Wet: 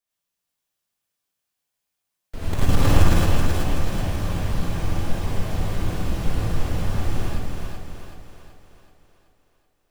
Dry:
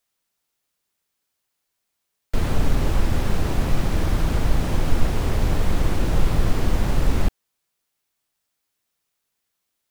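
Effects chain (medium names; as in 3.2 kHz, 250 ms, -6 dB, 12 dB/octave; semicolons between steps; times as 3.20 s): 2.53–3.15 s: waveshaping leveller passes 5; two-band feedback delay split 330 Hz, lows 276 ms, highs 379 ms, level -4 dB; gated-style reverb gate 130 ms rising, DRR -5.5 dB; trim -12 dB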